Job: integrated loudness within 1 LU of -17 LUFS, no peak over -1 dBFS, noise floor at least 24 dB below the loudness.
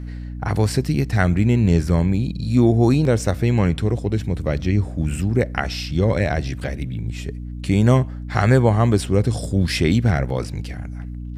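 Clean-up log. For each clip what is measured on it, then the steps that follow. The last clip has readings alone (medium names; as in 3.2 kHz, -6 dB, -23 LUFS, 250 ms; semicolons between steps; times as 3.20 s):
hum 60 Hz; highest harmonic 300 Hz; hum level -27 dBFS; loudness -20.0 LUFS; peak level -2.0 dBFS; loudness target -17.0 LUFS
-> hum notches 60/120/180/240/300 Hz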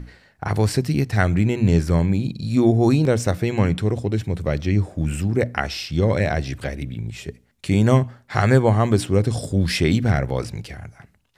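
hum not found; loudness -20.5 LUFS; peak level -2.5 dBFS; loudness target -17.0 LUFS
-> trim +3.5 dB; peak limiter -1 dBFS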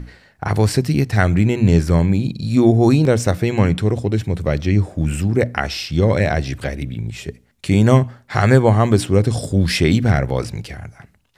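loudness -17.0 LUFS; peak level -1.0 dBFS; noise floor -54 dBFS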